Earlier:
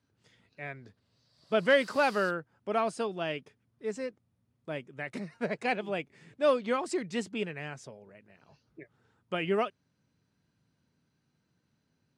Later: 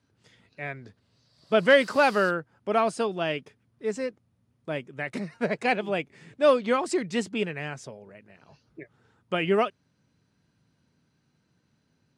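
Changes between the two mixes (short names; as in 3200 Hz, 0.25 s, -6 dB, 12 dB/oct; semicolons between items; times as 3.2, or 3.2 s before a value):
speech +5.5 dB; background +3.5 dB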